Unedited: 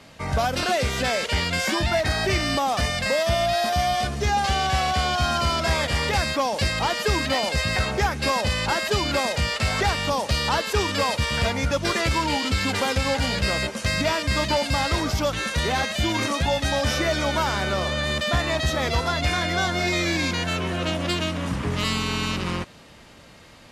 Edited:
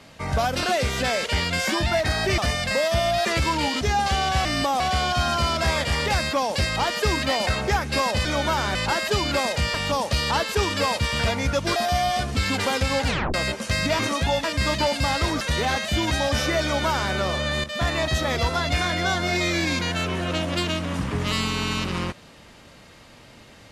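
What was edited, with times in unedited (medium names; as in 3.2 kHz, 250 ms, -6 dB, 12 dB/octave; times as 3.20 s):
2.38–2.73 s: move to 4.83 s
3.60–4.19 s: swap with 11.94–12.50 s
7.50–7.77 s: delete
9.54–9.92 s: delete
13.22 s: tape stop 0.27 s
15.11–15.48 s: delete
16.18–16.63 s: move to 14.14 s
17.14–17.64 s: copy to 8.55 s
18.16–18.41 s: fade in, from -12.5 dB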